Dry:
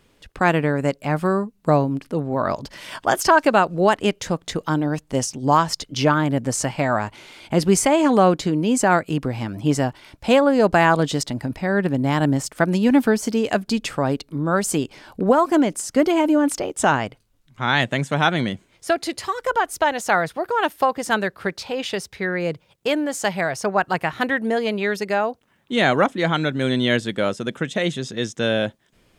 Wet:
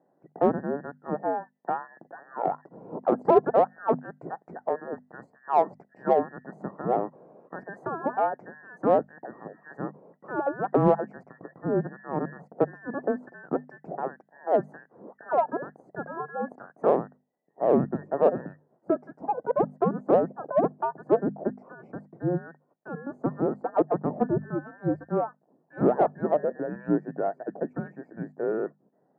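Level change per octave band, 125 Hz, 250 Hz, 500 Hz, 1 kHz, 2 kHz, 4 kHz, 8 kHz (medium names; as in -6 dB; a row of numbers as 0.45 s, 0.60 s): -11.5 dB, -9.5 dB, -5.0 dB, -7.0 dB, -19.0 dB, under -35 dB, under -40 dB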